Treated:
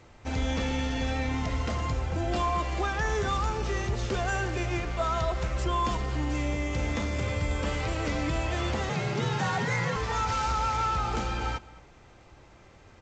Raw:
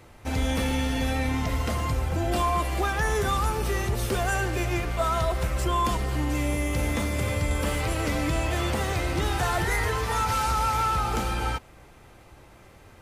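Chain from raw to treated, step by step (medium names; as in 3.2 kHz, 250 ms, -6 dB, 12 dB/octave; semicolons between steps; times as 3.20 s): 8.89–9.96 s: frequency shift +65 Hz; echo from a far wall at 37 m, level -20 dB; trim -3 dB; G.722 64 kbps 16 kHz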